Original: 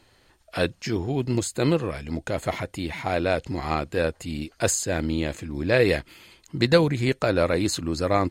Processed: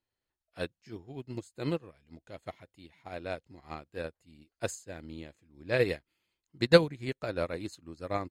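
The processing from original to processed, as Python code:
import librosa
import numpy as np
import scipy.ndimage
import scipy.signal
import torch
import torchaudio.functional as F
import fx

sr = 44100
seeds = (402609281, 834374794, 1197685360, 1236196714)

y = fx.peak_eq(x, sr, hz=3400.0, db=3.5, octaves=0.95, at=(1.96, 3.03))
y = fx.upward_expand(y, sr, threshold_db=-33.0, expansion=2.5)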